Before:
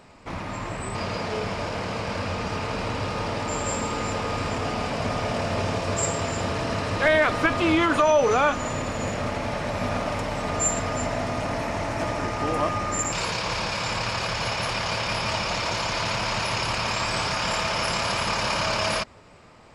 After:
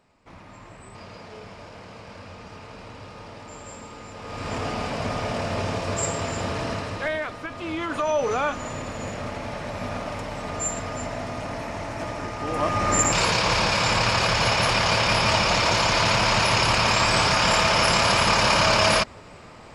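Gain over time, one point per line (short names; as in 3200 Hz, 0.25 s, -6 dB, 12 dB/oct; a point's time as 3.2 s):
4.13 s -13 dB
4.55 s -1 dB
6.68 s -1 dB
7.44 s -13 dB
8.16 s -4 dB
12.43 s -4 dB
12.91 s +6 dB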